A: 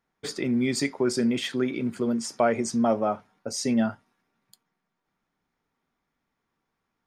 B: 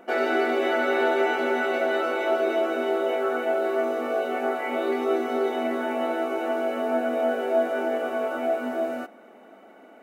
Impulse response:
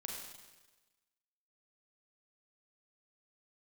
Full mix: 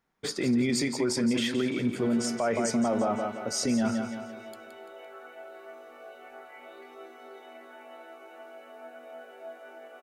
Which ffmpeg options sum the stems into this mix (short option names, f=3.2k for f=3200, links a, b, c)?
-filter_complex "[0:a]volume=1dB,asplit=2[a][b];[b]volume=-8.5dB[c];[1:a]highpass=f=1k:p=1,adelay=1900,volume=-15.5dB[d];[c]aecho=0:1:170|340|510|680|850|1020:1|0.42|0.176|0.0741|0.0311|0.0131[e];[a][d][e]amix=inputs=3:normalize=0,alimiter=limit=-19dB:level=0:latency=1:release=14"